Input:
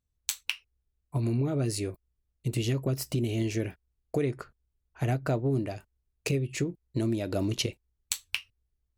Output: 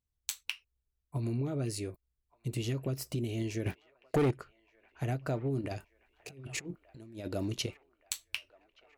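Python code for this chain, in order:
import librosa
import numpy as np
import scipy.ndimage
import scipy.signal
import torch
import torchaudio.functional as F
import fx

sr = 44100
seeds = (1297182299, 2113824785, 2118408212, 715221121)

p1 = fx.leveller(x, sr, passes=3, at=(3.66, 4.31))
p2 = fx.over_compress(p1, sr, threshold_db=-35.0, ratio=-0.5, at=(5.61, 7.28))
p3 = p2 + fx.echo_wet_bandpass(p2, sr, ms=1175, feedback_pct=60, hz=1300.0, wet_db=-20.0, dry=0)
y = p3 * librosa.db_to_amplitude(-5.5)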